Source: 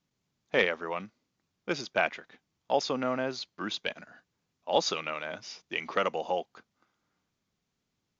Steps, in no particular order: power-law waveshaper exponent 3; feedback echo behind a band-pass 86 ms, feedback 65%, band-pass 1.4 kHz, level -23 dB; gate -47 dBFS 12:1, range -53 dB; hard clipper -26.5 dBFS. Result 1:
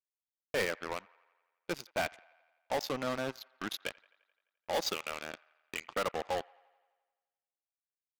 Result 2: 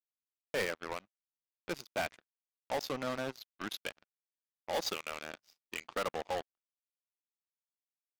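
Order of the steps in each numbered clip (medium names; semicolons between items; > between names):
hard clipper > power-law waveshaper > gate > feedback echo behind a band-pass; gate > hard clipper > feedback echo behind a band-pass > power-law waveshaper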